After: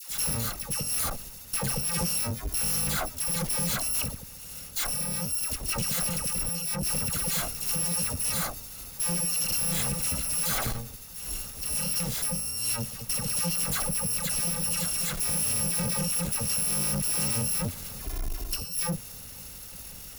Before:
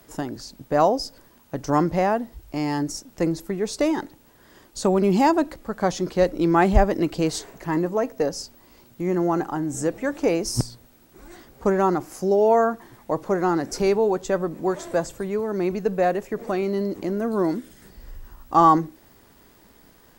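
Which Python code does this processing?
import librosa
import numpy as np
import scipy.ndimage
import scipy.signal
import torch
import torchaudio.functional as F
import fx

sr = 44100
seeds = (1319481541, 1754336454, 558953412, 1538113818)

y = fx.bit_reversed(x, sr, seeds[0], block=128)
y = fx.over_compress(y, sr, threshold_db=-25.0, ratio=-0.5)
y = fx.dispersion(y, sr, late='lows', ms=96.0, hz=1100.0)
y = fx.tube_stage(y, sr, drive_db=33.0, bias=0.35)
y = y * librosa.db_to_amplitude(8.0)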